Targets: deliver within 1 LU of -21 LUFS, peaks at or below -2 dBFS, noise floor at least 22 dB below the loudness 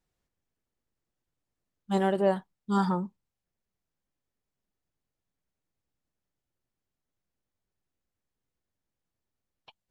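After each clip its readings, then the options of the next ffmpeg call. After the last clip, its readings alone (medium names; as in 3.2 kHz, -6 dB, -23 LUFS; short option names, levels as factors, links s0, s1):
loudness -28.5 LUFS; peak level -12.5 dBFS; loudness target -21.0 LUFS
-> -af "volume=2.37"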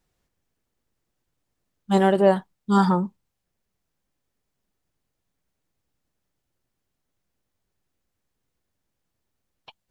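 loudness -21.0 LUFS; peak level -5.0 dBFS; noise floor -80 dBFS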